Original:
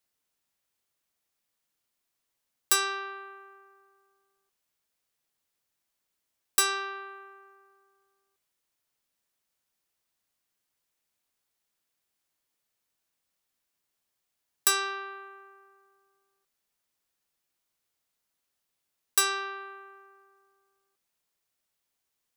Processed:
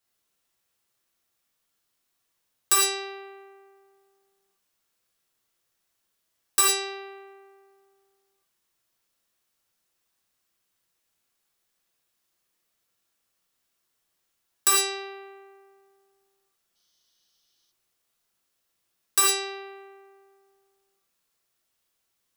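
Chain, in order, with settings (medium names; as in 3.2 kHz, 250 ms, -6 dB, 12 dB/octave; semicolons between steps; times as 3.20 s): gated-style reverb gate 130 ms flat, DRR -3.5 dB; time-frequency box 16.76–17.71 s, 2.9–6.5 kHz +12 dB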